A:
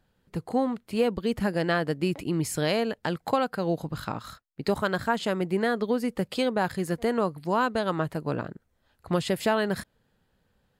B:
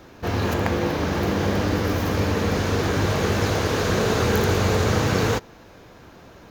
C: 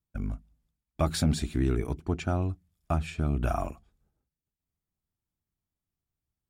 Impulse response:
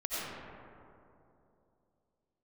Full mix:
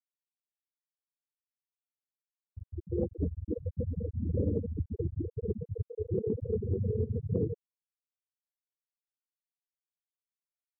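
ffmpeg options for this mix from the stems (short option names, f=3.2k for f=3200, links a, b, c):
-filter_complex "[0:a]equalizer=f=11k:t=o:w=1.9:g=11.5,bandreject=f=7.1k:w=12,acompressor=threshold=-34dB:ratio=2.5,volume=-10dB,asplit=3[a][b][c];[b]volume=-12.5dB[d];[1:a]equalizer=f=5.3k:t=o:w=3:g=-4.5,acontrast=57,adelay=2200,volume=-4.5dB,asplit=3[e][f][g];[f]volume=-21dB[h];[g]volume=-24dB[i];[2:a]equalizer=f=290:w=1.1:g=-13,bandreject=f=102.3:t=h:w=4,bandreject=f=204.6:t=h:w=4,bandreject=f=306.9:t=h:w=4,alimiter=level_in=2.5dB:limit=-24dB:level=0:latency=1:release=133,volume=-2.5dB,adelay=1350,volume=-6.5dB,asplit=2[j][k];[k]volume=-6dB[l];[c]apad=whole_len=383923[m];[e][m]sidechaincompress=threshold=-52dB:ratio=5:attack=16:release=144[n];[3:a]atrim=start_sample=2205[o];[h][l]amix=inputs=2:normalize=0[p];[p][o]afir=irnorm=-1:irlink=0[q];[d][i]amix=inputs=2:normalize=0,aecho=0:1:911:1[r];[a][n][j][q][r]amix=inputs=5:normalize=0,bandreject=f=50:t=h:w=6,bandreject=f=100:t=h:w=6,bandreject=f=150:t=h:w=6,bandreject=f=200:t=h:w=6,bandreject=f=250:t=h:w=6,bandreject=f=300:t=h:w=6,afftfilt=real='re*gte(hypot(re,im),0.282)':imag='im*gte(hypot(re,im),0.282)':win_size=1024:overlap=0.75,acompressor=threshold=-26dB:ratio=6"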